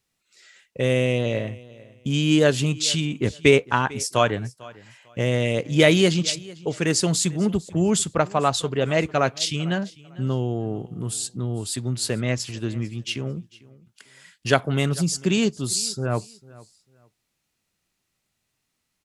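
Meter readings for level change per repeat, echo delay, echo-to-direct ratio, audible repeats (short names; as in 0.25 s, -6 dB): -12.5 dB, 0.448 s, -21.5 dB, 2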